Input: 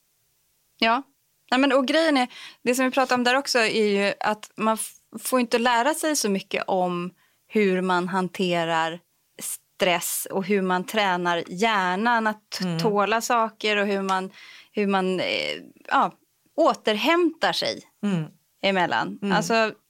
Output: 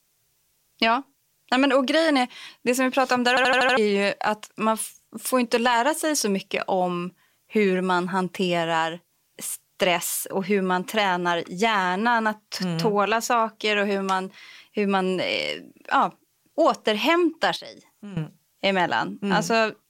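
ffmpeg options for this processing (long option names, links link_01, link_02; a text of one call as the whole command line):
ffmpeg -i in.wav -filter_complex "[0:a]asettb=1/sr,asplit=3[link_01][link_02][link_03];[link_01]atrim=end=17.564[link_04];[link_02]atrim=start=17.56:end=18.17,asetpts=PTS-STARTPTS,afade=type=in:duration=0.004:curve=qsin,afade=type=out:start_time=0.606:duration=0.004:curve=qsin,acompressor=threshold=-48dB:ratio=2:attack=3.2:release=140:knee=1:detection=peak[link_05];[link_03]atrim=start=18.166[link_06];[link_04][link_05]acrossfade=duration=0.004:curve1=hsin:curve2=qsin[link_07];[link_07][link_06]acrossfade=duration=0.004:curve1=qsin:curve2=hsin,asplit=7[link_08][link_09][link_10][link_11][link_12][link_13][link_14];[link_08]atrim=end=3.372[link_15];[link_09]atrim=start=3.288:end=3.372[link_16];[link_10]atrim=start=3.288:end=3.372[link_17];[link_11]atrim=start=3.288:end=3.372[link_18];[link_12]atrim=start=3.288:end=3.372[link_19];[link_13]atrim=start=3.288:end=3.372[link_20];[link_14]atrim=start=3.768[link_21];[link_15][link_16]acrossfade=duration=0.004:curve1=hsin:curve2=hsin[link_22];[link_22][link_17]acrossfade=duration=0.004:curve1=hsin:curve2=hsin[link_23];[link_23][link_18]acrossfade=duration=0.004:curve1=hsin:curve2=hsin[link_24];[link_24][link_19]acrossfade=duration=0.004:curve1=hsin:curve2=hsin[link_25];[link_25][link_20]acrossfade=duration=0.004:curve1=hsin:curve2=hsin[link_26];[link_26][link_21]acrossfade=duration=0.004:curve1=hsin:curve2=hsin" out.wav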